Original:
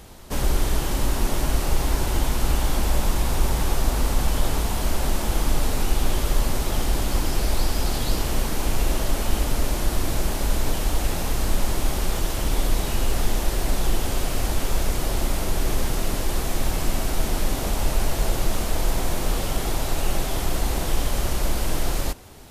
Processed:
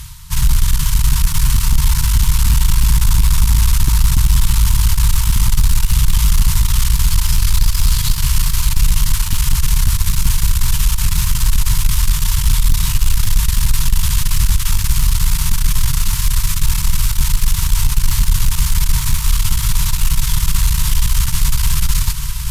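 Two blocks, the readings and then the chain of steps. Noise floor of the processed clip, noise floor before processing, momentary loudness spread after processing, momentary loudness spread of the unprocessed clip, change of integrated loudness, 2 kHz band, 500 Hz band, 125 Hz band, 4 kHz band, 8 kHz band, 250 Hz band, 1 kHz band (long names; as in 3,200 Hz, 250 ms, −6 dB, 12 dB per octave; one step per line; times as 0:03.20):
−19 dBFS, −27 dBFS, 3 LU, 2 LU, +9.5 dB, +4.5 dB, below −20 dB, +11.0 dB, +8.5 dB, +10.5 dB, 0.0 dB, −0.5 dB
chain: brick-wall band-stop 170–890 Hz
in parallel at −10.5 dB: dead-zone distortion −33.5 dBFS
on the sum: feedback delay with all-pass diffusion 625 ms, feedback 59%, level −8.5 dB
harmonic generator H 5 −10 dB, 8 −18 dB, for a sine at −4 dBFS
reversed playback
upward compression, threshold −21 dBFS
reversed playback
parametric band 1,200 Hz −9 dB 2.6 octaves
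level +2 dB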